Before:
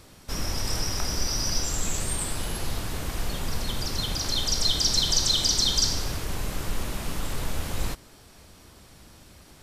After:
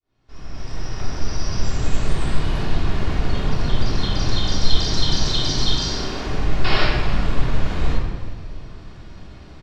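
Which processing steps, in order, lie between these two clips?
fade-in on the opening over 2.20 s; 5.78–6.27 s: steep high-pass 210 Hz 48 dB/octave; 6.64–6.85 s: painted sound noise 310–5600 Hz -23 dBFS; saturation -17.5 dBFS, distortion -17 dB; distance through air 170 m; delay 369 ms -17.5 dB; simulated room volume 1200 m³, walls mixed, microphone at 3.3 m; trim +1.5 dB

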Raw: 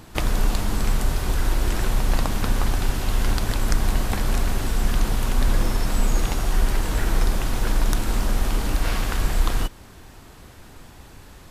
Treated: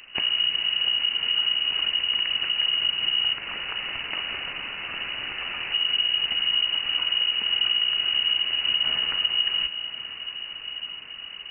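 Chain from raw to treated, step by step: 3.33–5.72 s: high-pass 240 Hz 6 dB/octave; compression 3:1, threshold -21 dBFS, peak gain reduction 7 dB; echo that smears into a reverb 1015 ms, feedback 69%, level -12 dB; frequency inversion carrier 2.9 kHz; trim -3 dB

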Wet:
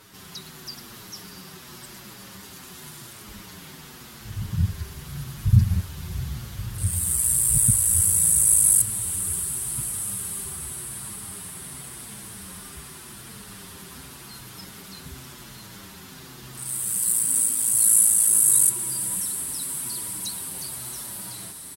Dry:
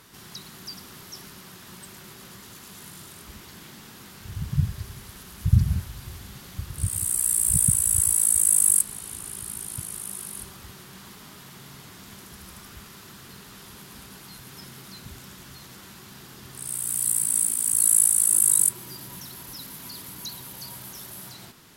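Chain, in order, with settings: echo that smears into a reverb 652 ms, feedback 69%, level -11.5 dB; endless flanger 6.9 ms -0.89 Hz; trim +4.5 dB

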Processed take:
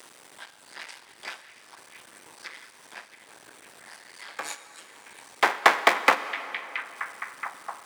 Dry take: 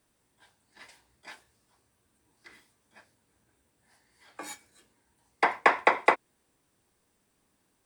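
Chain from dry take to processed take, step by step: cycle switcher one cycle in 2, muted; frequency weighting A; in parallel at +1.5 dB: upward compressor, threshold -30 dBFS; on the sum: repeats whose band climbs or falls 675 ms, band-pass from 2.5 kHz, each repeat -0.7 oct, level -10.5 dB; plate-style reverb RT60 3.3 s, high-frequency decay 0.8×, DRR 11.5 dB; trim -1 dB

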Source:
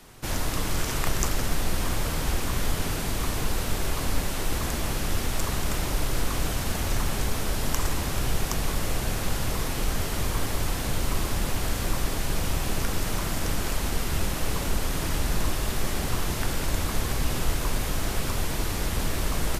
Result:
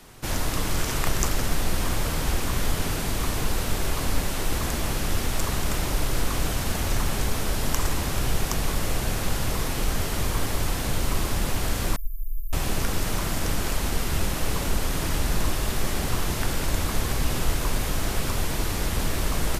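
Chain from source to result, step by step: 11.96–12.53 s: inverse Chebyshev band-stop 210–3800 Hz, stop band 80 dB; trim +1.5 dB

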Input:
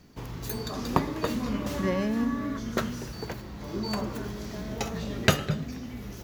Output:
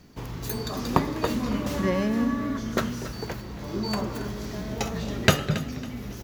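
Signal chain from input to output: feedback delay 276 ms, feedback 30%, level -14.5 dB; trim +2.5 dB

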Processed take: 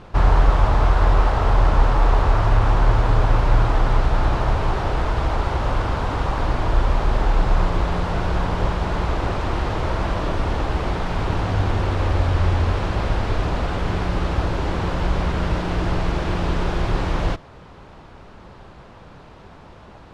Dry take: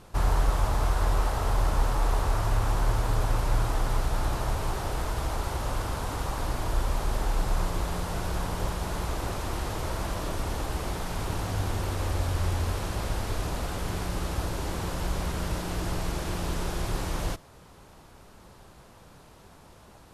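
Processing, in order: low-pass 3.3 kHz 12 dB/octave; trim +9 dB

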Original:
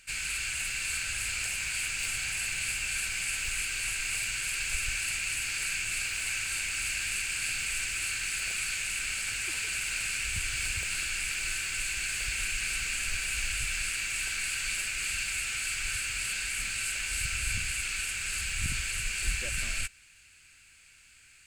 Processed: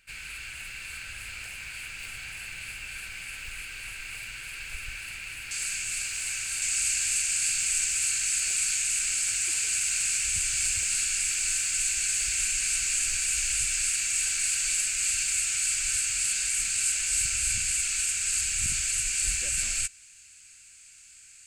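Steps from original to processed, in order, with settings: peaking EQ 7.2 kHz -8 dB 1.3 oct, from 5.51 s +8.5 dB, from 6.62 s +15 dB; trim -4 dB

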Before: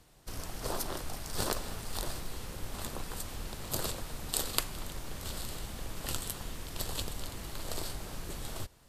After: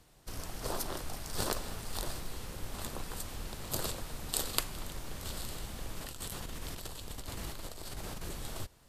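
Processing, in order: 6.01–8.29 s: compressor with a negative ratio -40 dBFS, ratio -1; trim -1 dB

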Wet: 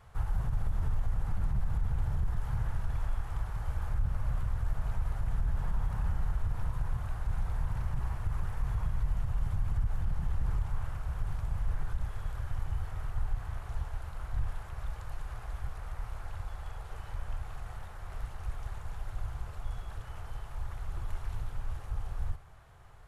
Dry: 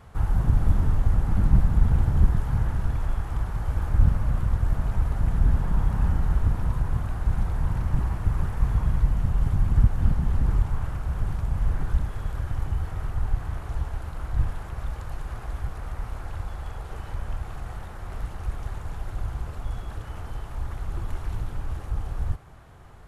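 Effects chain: on a send at -23 dB: reverberation RT60 0.25 s, pre-delay 3 ms; on the sum: peak limiter -16 dBFS, peak gain reduction 10 dB; peaking EQ 260 Hz -11.5 dB 1.2 oct; trim -5.5 dB

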